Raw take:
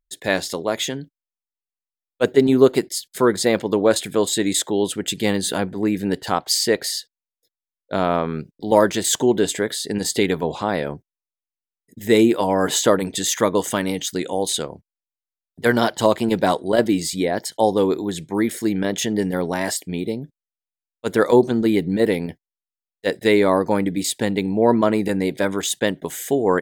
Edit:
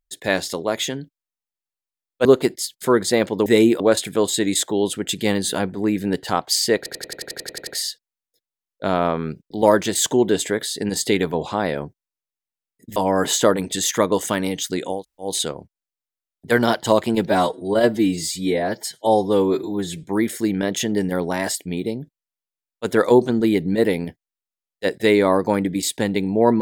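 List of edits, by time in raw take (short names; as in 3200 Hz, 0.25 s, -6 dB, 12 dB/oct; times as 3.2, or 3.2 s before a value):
2.25–2.58 cut
6.76 stutter 0.09 s, 11 plays
12.05–12.39 move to 3.79
14.4 insert room tone 0.29 s, crossfade 0.16 s
16.4–18.25 stretch 1.5×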